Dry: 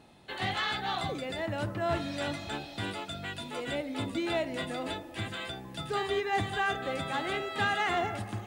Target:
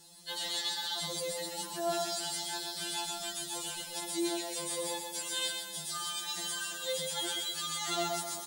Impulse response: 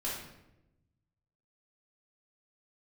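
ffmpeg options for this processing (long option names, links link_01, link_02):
-filter_complex "[0:a]asettb=1/sr,asplit=3[link_01][link_02][link_03];[link_01]atrim=end=2.874[link_04];[link_02]atrim=start=2.87:end=3.85,asetpts=PTS-STARTPTS,afade=type=in:duration=0.004:curve=qsin,afade=type=out:start_time=0.976:duration=0.004:curve=qsin,asubboost=boost=9:cutoff=220[link_05];[link_03]atrim=start=3.846[link_06];[link_04][link_05]acrossfade=duration=0.004:curve1=hsin:curve2=qsin[link_07];[link_07][link_06]acrossfade=duration=0.004:curve1=qsin:curve2=hsin,aexciter=amount=10.4:drive=6.7:freq=3700,alimiter=limit=-20dB:level=0:latency=1:release=26,asplit=2[link_08][link_09];[link_09]aecho=0:1:128|256|384|512|640:0.562|0.231|0.0945|0.0388|0.0159[link_10];[link_08][link_10]amix=inputs=2:normalize=0,afftfilt=real='re*2.83*eq(mod(b,8),0)':imag='im*2.83*eq(mod(b,8),0)':win_size=2048:overlap=0.75,volume=-4.5dB"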